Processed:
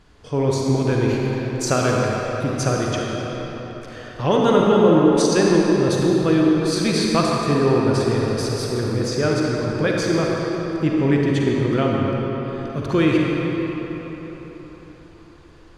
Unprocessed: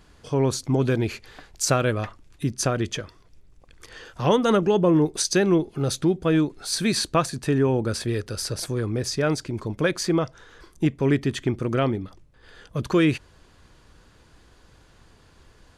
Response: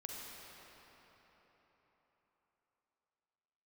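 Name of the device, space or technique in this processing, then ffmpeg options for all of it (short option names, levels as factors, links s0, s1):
cathedral: -filter_complex "[1:a]atrim=start_sample=2205[s0];[0:a][s0]afir=irnorm=-1:irlink=0,highshelf=f=8900:g=-11.5,volume=2.11"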